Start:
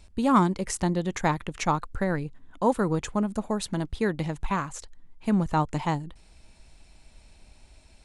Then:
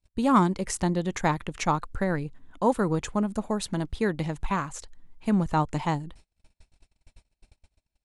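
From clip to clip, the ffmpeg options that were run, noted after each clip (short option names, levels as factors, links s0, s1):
-af "agate=range=0.0224:threshold=0.00447:ratio=16:detection=peak"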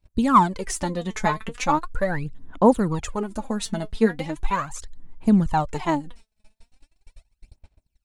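-af "aphaser=in_gain=1:out_gain=1:delay=4.7:decay=0.69:speed=0.39:type=sinusoidal"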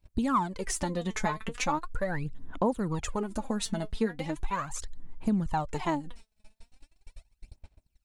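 -af "acompressor=threshold=0.0355:ratio=2.5"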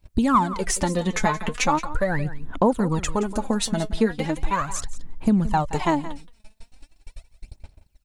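-af "aecho=1:1:173:0.178,volume=2.51"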